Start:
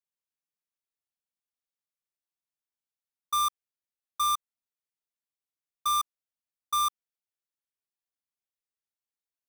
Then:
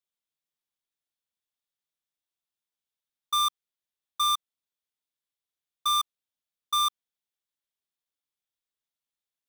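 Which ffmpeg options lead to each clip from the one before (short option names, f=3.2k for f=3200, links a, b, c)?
-af "equalizer=f=3.5k:t=o:w=0.42:g=7"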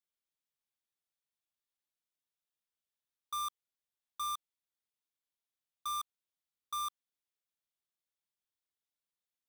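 -af "asoftclip=type=hard:threshold=-31dB,volume=-4.5dB"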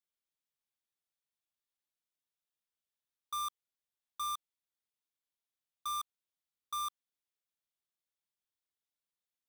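-af anull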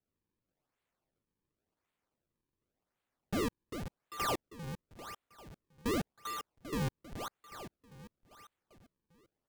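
-af "aecho=1:1:396|792|1188|1584|1980|2376:0.398|0.215|0.116|0.0627|0.0339|0.0183,acrusher=samples=37:mix=1:aa=0.000001:lfo=1:lforange=59.2:lforate=0.91,volume=4dB"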